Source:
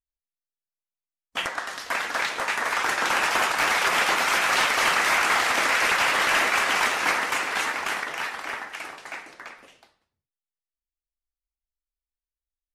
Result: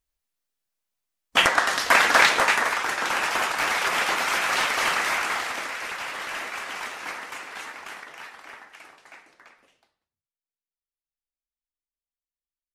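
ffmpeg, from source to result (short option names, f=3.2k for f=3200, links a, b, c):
-af "volume=10dB,afade=t=out:st=2.23:d=0.56:silence=0.251189,afade=t=out:st=4.92:d=0.82:silence=0.354813"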